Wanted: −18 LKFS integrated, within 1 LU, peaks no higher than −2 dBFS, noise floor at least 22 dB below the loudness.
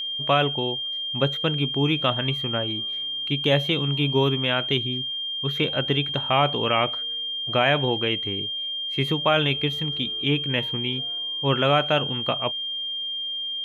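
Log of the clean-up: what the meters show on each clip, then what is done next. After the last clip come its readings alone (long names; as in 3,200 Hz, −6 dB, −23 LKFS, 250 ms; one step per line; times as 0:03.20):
interfering tone 3,200 Hz; level of the tone −27 dBFS; integrated loudness −23.5 LKFS; sample peak −6.5 dBFS; target loudness −18.0 LKFS
→ notch filter 3,200 Hz, Q 30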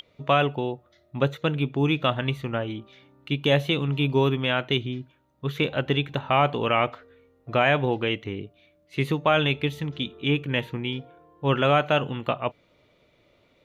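interfering tone none found; integrated loudness −25.0 LKFS; sample peak −7.5 dBFS; target loudness −18.0 LKFS
→ level +7 dB
brickwall limiter −2 dBFS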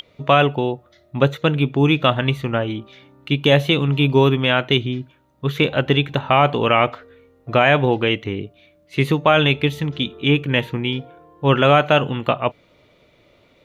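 integrated loudness −18.5 LKFS; sample peak −2.0 dBFS; background noise floor −57 dBFS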